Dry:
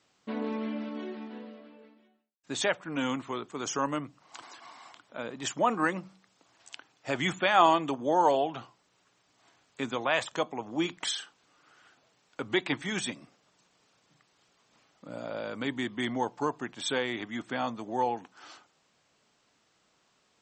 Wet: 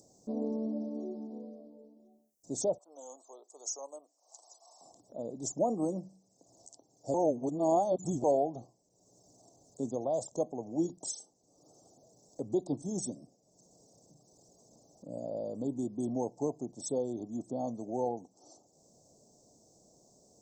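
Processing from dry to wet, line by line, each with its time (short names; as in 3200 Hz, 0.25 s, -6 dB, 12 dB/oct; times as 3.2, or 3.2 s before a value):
2.78–4.81 Bessel high-pass 910 Hz, order 4
7.14–8.24 reverse
whole clip: elliptic band-stop 670–5900 Hz, stop band 60 dB; upward compressor, threshold -52 dBFS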